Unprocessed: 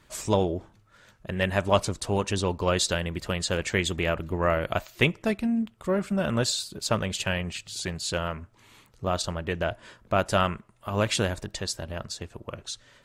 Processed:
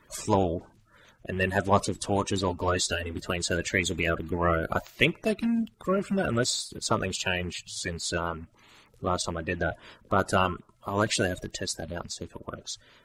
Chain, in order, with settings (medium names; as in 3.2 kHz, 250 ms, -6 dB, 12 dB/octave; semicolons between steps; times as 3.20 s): coarse spectral quantiser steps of 30 dB; 2.49–3.30 s: comb of notches 170 Hz